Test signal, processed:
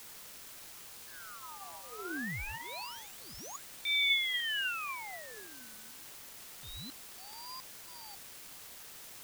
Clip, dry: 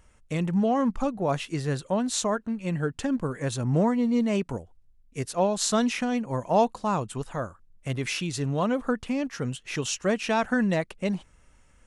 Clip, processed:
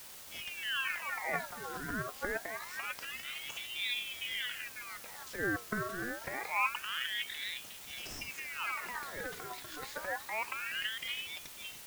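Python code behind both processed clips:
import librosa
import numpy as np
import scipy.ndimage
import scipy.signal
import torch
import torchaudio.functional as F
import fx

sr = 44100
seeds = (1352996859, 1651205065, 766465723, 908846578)

p1 = fx.highpass(x, sr, hz=400.0, slope=6)
p2 = fx.fixed_phaser(p1, sr, hz=680.0, stages=4)
p3 = p2 + 10.0 ** (-7.5 / 20.0) * np.pad(p2, (int(549 * sr / 1000.0), 0))[:len(p2)]
p4 = fx.transient(p3, sr, attack_db=-7, sustain_db=12)
p5 = scipy.signal.sosfilt(scipy.signal.butter(4, 6400.0, 'lowpass', fs=sr, output='sos'), p4)
p6 = fx.hum_notches(p5, sr, base_hz=60, count=9)
p7 = fx.env_lowpass_down(p6, sr, base_hz=1000.0, full_db=-28.0)
p8 = fx.quant_dither(p7, sr, seeds[0], bits=6, dither='triangular')
p9 = p7 + (p8 * 10.0 ** (-3.5 / 20.0))
p10 = fx.ring_lfo(p9, sr, carrier_hz=1900.0, swing_pct=55, hz=0.26)
y = p10 * 10.0 ** (-7.5 / 20.0)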